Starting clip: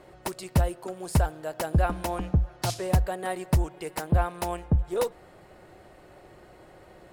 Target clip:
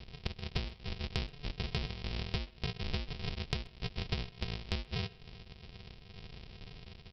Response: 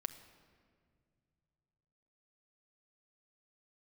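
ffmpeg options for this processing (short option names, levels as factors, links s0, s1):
-filter_complex "[0:a]aresample=11025,acrusher=samples=38:mix=1:aa=0.000001,aresample=44100,highshelf=f=2000:t=q:w=1.5:g=9,acompressor=threshold=0.02:ratio=12,asplit=2[s0][s1];[s1]adelay=130,highpass=300,lowpass=3400,asoftclip=type=hard:threshold=0.0794,volume=0.0891[s2];[s0][s2]amix=inputs=2:normalize=0,volume=1.12"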